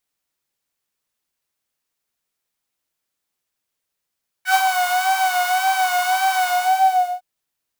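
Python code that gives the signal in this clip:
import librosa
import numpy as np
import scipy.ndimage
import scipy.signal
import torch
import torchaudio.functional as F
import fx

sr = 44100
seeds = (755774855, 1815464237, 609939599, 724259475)

y = fx.sub_patch_vibrato(sr, seeds[0], note=78, wave='triangle', wave2='saw', interval_st=0, detune_cents=16, level2_db=-2, sub_db=-29, noise_db=-10, kind='highpass', cutoff_hz=670.0, q=5.9, env_oct=1.5, env_decay_s=0.09, env_sustain_pct=40, attack_ms=93.0, decay_s=0.08, sustain_db=-5.0, release_s=0.77, note_s=1.99, lfo_hz=1.8, vibrato_cents=53)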